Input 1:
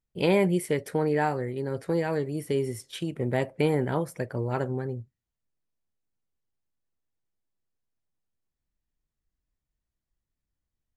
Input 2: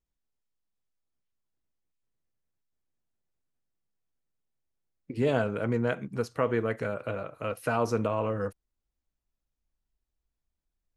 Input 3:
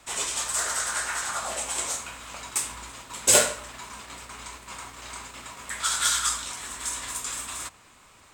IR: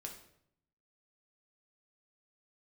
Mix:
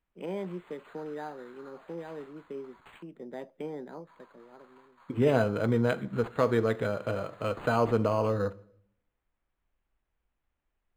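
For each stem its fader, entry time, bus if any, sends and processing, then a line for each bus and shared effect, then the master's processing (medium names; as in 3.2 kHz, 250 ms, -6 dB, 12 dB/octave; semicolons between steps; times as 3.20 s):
-12.5 dB, 0.00 s, no send, steep high-pass 170 Hz 48 dB/octave; low-pass that closes with the level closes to 2.4 kHz, closed at -26.5 dBFS; auto duck -17 dB, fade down 1.30 s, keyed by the second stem
+0.5 dB, 0.00 s, send -9 dB, treble shelf 7.4 kHz +8 dB
-18.5 dB, 0.30 s, muted 3.03–4.07 s, no send, high-pass 780 Hz; high-order bell 5 kHz -12 dB 2.6 oct; gain riding within 4 dB 0.5 s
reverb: on, RT60 0.70 s, pre-delay 3 ms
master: decimation joined by straight lines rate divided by 8×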